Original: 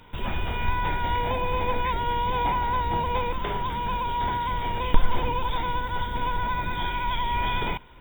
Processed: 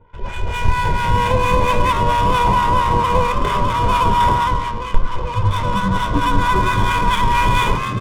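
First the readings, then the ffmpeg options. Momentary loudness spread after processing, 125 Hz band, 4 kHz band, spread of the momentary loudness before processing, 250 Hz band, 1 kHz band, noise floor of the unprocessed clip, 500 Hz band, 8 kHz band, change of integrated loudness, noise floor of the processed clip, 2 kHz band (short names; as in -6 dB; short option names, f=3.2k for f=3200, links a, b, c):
8 LU, +12.0 dB, +8.0 dB, 4 LU, +12.0 dB, +10.0 dB, -32 dBFS, +10.0 dB, n/a, +10.0 dB, -26 dBFS, +9.0 dB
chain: -filter_complex "[0:a]aecho=1:1:2:0.54,asplit=2[a][b];[b]asplit=6[c][d][e][f][g][h];[c]adelay=395,afreqshift=91,volume=-8.5dB[i];[d]adelay=790,afreqshift=182,volume=-14.2dB[j];[e]adelay=1185,afreqshift=273,volume=-19.9dB[k];[f]adelay=1580,afreqshift=364,volume=-25.5dB[l];[g]adelay=1975,afreqshift=455,volume=-31.2dB[m];[h]adelay=2370,afreqshift=546,volume=-36.9dB[n];[i][j][k][l][m][n]amix=inputs=6:normalize=0[o];[a][o]amix=inputs=2:normalize=0,dynaudnorm=f=160:g=5:m=12dB,acrossover=split=890[p][q];[p]aeval=exprs='val(0)*(1-0.7/2+0.7/2*cos(2*PI*4.4*n/s))':c=same[r];[q]aeval=exprs='val(0)*(1-0.7/2-0.7/2*cos(2*PI*4.4*n/s))':c=same[s];[r][s]amix=inputs=2:normalize=0,asplit=2[t][u];[u]aecho=0:1:103:0.2[v];[t][v]amix=inputs=2:normalize=0,adynamicsmooth=sensitivity=5.5:basefreq=1.1k,volume=1.5dB"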